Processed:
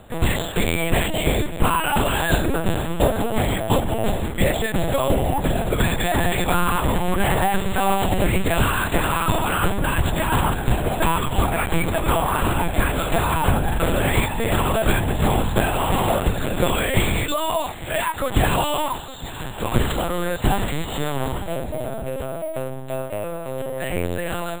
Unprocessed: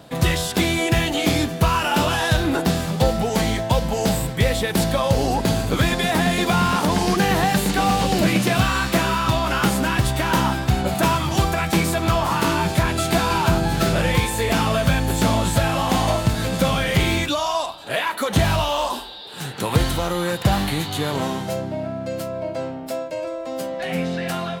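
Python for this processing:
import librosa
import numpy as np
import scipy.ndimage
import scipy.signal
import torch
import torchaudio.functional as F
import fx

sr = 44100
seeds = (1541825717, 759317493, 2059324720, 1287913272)

p1 = x + fx.echo_feedback(x, sr, ms=862, feedback_pct=42, wet_db=-16.0, dry=0)
p2 = fx.lpc_vocoder(p1, sr, seeds[0], excitation='pitch_kept', order=10)
y = np.repeat(p2[::4], 4)[:len(p2)]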